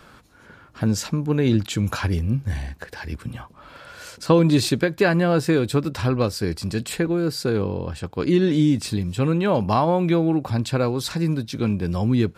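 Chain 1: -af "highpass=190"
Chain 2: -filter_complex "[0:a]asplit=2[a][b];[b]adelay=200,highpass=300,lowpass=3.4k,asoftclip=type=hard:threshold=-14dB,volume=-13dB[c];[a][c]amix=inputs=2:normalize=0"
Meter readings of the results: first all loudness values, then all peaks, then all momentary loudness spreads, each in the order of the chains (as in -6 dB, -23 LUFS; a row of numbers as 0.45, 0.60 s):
-23.5, -22.0 LUFS; -2.5, -4.5 dBFS; 16, 12 LU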